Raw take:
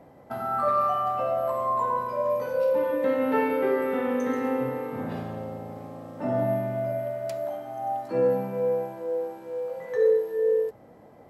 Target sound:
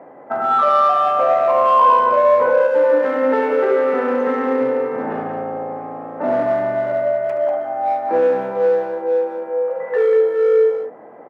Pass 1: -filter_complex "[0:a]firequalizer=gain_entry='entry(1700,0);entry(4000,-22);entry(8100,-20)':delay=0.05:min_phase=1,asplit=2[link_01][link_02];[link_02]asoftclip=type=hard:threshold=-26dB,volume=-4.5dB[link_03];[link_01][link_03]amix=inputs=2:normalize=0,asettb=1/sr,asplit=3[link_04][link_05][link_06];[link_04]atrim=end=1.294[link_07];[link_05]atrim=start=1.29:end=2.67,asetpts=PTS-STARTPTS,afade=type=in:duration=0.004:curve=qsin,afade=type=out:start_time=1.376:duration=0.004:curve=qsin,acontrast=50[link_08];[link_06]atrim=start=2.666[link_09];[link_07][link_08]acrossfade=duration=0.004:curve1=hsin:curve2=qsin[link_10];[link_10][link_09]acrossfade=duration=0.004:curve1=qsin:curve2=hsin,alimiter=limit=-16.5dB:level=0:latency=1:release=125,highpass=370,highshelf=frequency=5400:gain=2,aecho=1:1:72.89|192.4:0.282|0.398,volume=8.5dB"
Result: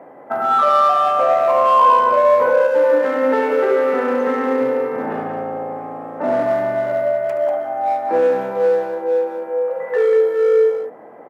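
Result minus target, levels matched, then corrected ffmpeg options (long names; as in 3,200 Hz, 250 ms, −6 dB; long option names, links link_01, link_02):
8,000 Hz band +7.0 dB
-filter_complex "[0:a]firequalizer=gain_entry='entry(1700,0);entry(4000,-22);entry(8100,-20)':delay=0.05:min_phase=1,asplit=2[link_01][link_02];[link_02]asoftclip=type=hard:threshold=-26dB,volume=-4.5dB[link_03];[link_01][link_03]amix=inputs=2:normalize=0,asettb=1/sr,asplit=3[link_04][link_05][link_06];[link_04]atrim=end=1.294[link_07];[link_05]atrim=start=1.29:end=2.67,asetpts=PTS-STARTPTS,afade=type=in:duration=0.004:curve=qsin,afade=type=out:start_time=1.376:duration=0.004:curve=qsin,acontrast=50[link_08];[link_06]atrim=start=2.666[link_09];[link_07][link_08]acrossfade=duration=0.004:curve1=hsin:curve2=qsin[link_10];[link_10][link_09]acrossfade=duration=0.004:curve1=qsin:curve2=hsin,alimiter=limit=-16.5dB:level=0:latency=1:release=125,highpass=370,highshelf=frequency=5400:gain=-9,aecho=1:1:72.89|192.4:0.282|0.398,volume=8.5dB"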